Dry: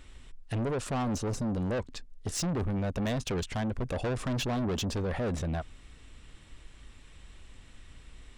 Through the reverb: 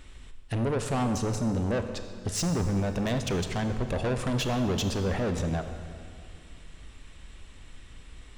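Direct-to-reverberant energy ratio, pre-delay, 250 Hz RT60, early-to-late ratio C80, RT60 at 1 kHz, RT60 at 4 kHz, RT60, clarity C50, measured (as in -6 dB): 7.0 dB, 26 ms, 2.4 s, 8.5 dB, 2.1 s, 1.8 s, 2.2 s, 8.0 dB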